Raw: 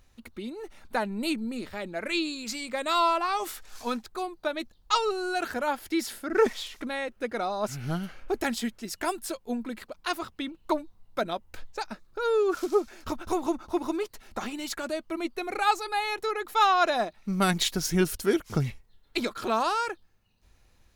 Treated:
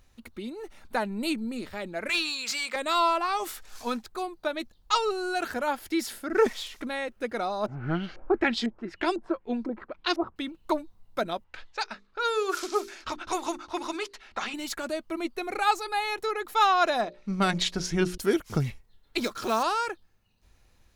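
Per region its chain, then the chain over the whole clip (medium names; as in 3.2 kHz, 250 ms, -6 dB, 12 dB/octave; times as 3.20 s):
2.09–2.76 s: high-pass 950 Hz 6 dB/octave + overdrive pedal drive 15 dB, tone 5.1 kHz, clips at -18 dBFS
7.66–10.36 s: peaking EQ 340 Hz +8 dB 0.36 oct + LFO low-pass saw up 2 Hz 600–5800 Hz
11.44–14.54 s: hum notches 50/100/150/200/250/300/350/400/450 Hz + level-controlled noise filter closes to 2.4 kHz, open at -21.5 dBFS + tilt shelf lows -8.5 dB, about 750 Hz
17.01–18.18 s: low-pass 6.1 kHz + hum notches 60/120/180/240/300/360/420/480/540/600 Hz
19.21–19.65 s: block-companded coder 5-bit + peaking EQ 5.7 kHz +7 dB 0.49 oct
whole clip: none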